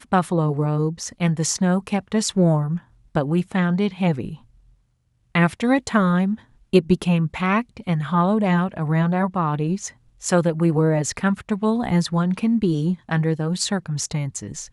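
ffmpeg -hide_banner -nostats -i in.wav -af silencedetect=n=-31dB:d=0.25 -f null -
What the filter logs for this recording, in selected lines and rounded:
silence_start: 2.78
silence_end: 3.15 | silence_duration: 0.37
silence_start: 4.35
silence_end: 5.35 | silence_duration: 1.01
silence_start: 6.35
silence_end: 6.73 | silence_duration: 0.38
silence_start: 9.88
silence_end: 10.24 | silence_duration: 0.35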